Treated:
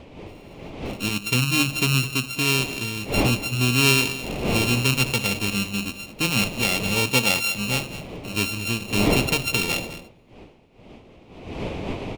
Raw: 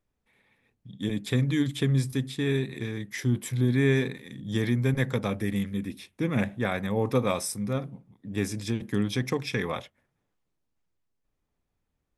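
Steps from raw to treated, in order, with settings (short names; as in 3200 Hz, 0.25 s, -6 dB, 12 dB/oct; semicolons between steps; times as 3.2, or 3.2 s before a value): sample sorter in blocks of 32 samples; wind noise 500 Hz -34 dBFS; resonant high shelf 2000 Hz +7 dB, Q 3; echo 0.21 s -14.5 dB; gain +1.5 dB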